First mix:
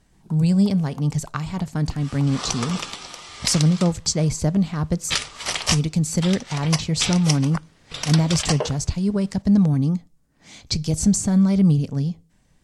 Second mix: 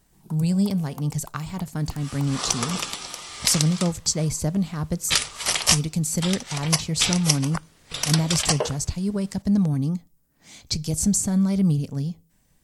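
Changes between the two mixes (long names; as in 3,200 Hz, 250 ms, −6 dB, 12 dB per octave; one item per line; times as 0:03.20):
speech −4.0 dB
master: remove high-frequency loss of the air 57 metres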